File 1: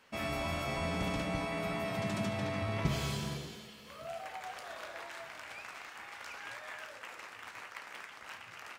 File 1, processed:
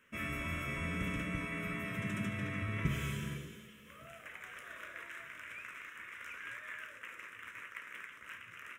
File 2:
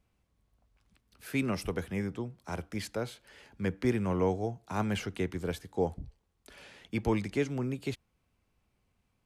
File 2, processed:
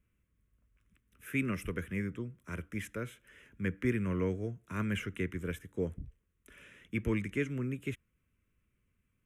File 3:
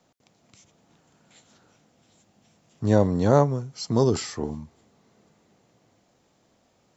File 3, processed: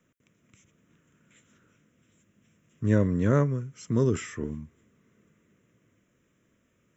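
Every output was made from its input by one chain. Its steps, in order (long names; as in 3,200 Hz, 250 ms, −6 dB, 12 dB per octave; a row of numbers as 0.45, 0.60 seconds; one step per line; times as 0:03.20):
phaser with its sweep stopped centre 1,900 Hz, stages 4
dynamic equaliser 2,000 Hz, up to +3 dB, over −51 dBFS, Q 1.1
level −1 dB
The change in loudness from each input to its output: −2.0, −2.5, −3.5 LU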